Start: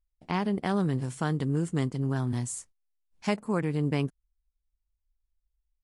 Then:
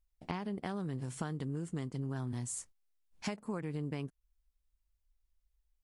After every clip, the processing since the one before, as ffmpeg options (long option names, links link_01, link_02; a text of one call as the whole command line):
ffmpeg -i in.wav -af "acompressor=threshold=-36dB:ratio=12,volume=1.5dB" out.wav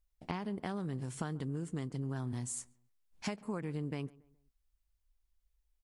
ffmpeg -i in.wav -filter_complex "[0:a]asplit=2[link_01][link_02];[link_02]adelay=139,lowpass=frequency=1700:poles=1,volume=-22dB,asplit=2[link_03][link_04];[link_04]adelay=139,lowpass=frequency=1700:poles=1,volume=0.4,asplit=2[link_05][link_06];[link_06]adelay=139,lowpass=frequency=1700:poles=1,volume=0.4[link_07];[link_01][link_03][link_05][link_07]amix=inputs=4:normalize=0" out.wav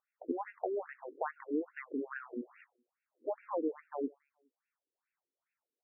ffmpeg -i in.wav -af "afftfilt=real='re*between(b*sr/1024,350*pow(2000/350,0.5+0.5*sin(2*PI*2.4*pts/sr))/1.41,350*pow(2000/350,0.5+0.5*sin(2*PI*2.4*pts/sr))*1.41)':imag='im*between(b*sr/1024,350*pow(2000/350,0.5+0.5*sin(2*PI*2.4*pts/sr))/1.41,350*pow(2000/350,0.5+0.5*sin(2*PI*2.4*pts/sr))*1.41)':win_size=1024:overlap=0.75,volume=10.5dB" out.wav